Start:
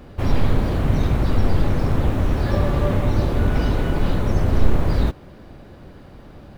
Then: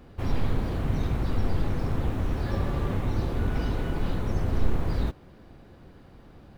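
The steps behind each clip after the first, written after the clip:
notch filter 590 Hz, Q 15
level −8 dB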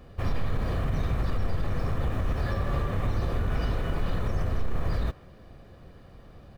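comb filter 1.7 ms, depth 36%
dynamic equaliser 1,500 Hz, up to +4 dB, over −52 dBFS, Q 1
brickwall limiter −18.5 dBFS, peak gain reduction 9.5 dB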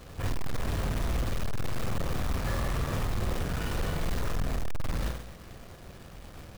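gain into a clipping stage and back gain 29.5 dB
flutter between parallel walls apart 8.5 metres, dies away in 0.62 s
log-companded quantiser 4 bits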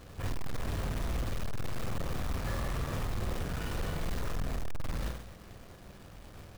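hum with harmonics 100 Hz, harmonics 18, −55 dBFS −6 dB per octave
level −4 dB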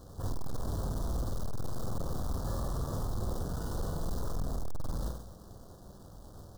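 Butterworth band-reject 2,300 Hz, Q 0.74

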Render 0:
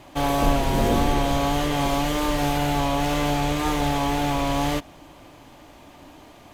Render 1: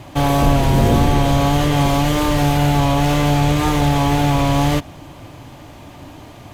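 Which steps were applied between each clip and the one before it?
parametric band 110 Hz +11 dB 1.2 octaves
in parallel at +1 dB: brickwall limiter −16 dBFS, peak gain reduction 10 dB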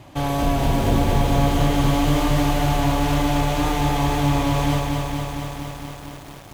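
feedback echo at a low word length 230 ms, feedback 80%, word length 6 bits, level −4 dB
level −7 dB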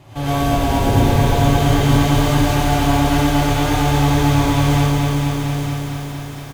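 single-tap delay 885 ms −10 dB
reverb whose tail is shaped and stops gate 140 ms rising, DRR −6.5 dB
level −3 dB

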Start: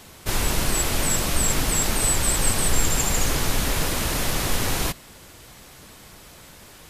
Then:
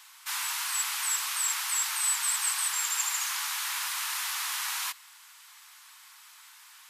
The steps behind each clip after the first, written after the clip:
Butterworth high-pass 920 Hz 48 dB per octave
level −4.5 dB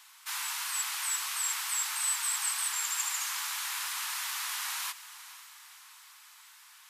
feedback delay with all-pass diffusion 499 ms, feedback 50%, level −15 dB
tape wow and flutter 16 cents
level −3 dB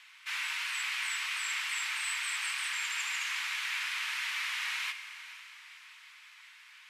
resonant band-pass 2,300 Hz, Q 2.3
convolution reverb RT60 2.0 s, pre-delay 3 ms, DRR 9 dB
level +7.5 dB

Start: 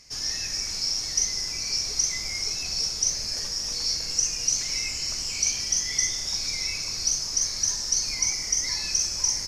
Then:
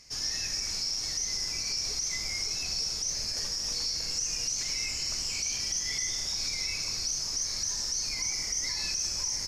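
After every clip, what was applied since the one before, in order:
brickwall limiter −20 dBFS, peak gain reduction 10 dB
level −2 dB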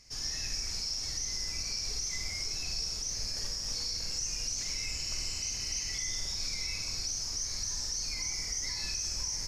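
healed spectral selection 0:05.05–0:05.92, 2,000–5,000 Hz before
low-shelf EQ 99 Hz +9.5 dB
on a send: flutter between parallel walls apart 8.8 metres, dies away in 0.41 s
on the sum: level −4.5 dB

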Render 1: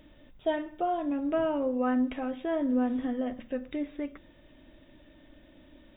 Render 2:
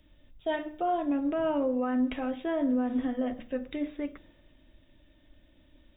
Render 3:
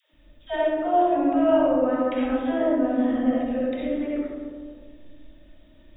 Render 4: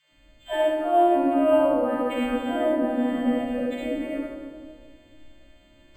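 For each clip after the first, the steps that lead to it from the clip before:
hum removal 60.54 Hz, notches 13; brickwall limiter −23 dBFS, peak gain reduction 6 dB; multiband upward and downward expander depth 40%; level +2 dB
all-pass dispersion lows, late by 134 ms, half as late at 420 Hz; convolution reverb RT60 1.8 s, pre-delay 25 ms, DRR −5.5 dB
every partial snapped to a pitch grid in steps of 2 semitones; flutter between parallel walls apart 6.4 metres, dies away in 0.2 s; linearly interpolated sample-rate reduction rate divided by 4×

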